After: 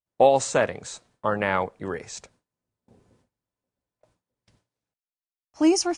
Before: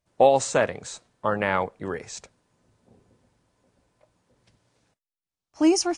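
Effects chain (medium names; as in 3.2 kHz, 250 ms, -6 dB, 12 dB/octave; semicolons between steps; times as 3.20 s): gate with hold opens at -51 dBFS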